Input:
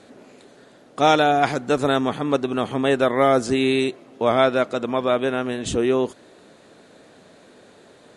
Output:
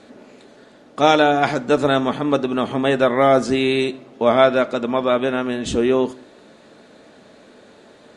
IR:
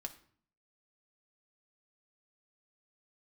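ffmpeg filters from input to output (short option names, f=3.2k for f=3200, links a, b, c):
-filter_complex "[0:a]asplit=2[a][b];[1:a]atrim=start_sample=2205,lowpass=7.9k[c];[b][c]afir=irnorm=-1:irlink=0,volume=3.5dB[d];[a][d]amix=inputs=2:normalize=0,volume=-3.5dB"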